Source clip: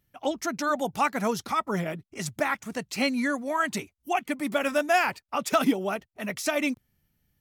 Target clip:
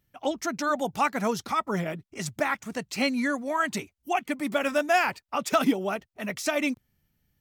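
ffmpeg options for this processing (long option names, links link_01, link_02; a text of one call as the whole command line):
ffmpeg -i in.wav -af "equalizer=frequency=11000:width_type=o:width=0.32:gain=-4.5" out.wav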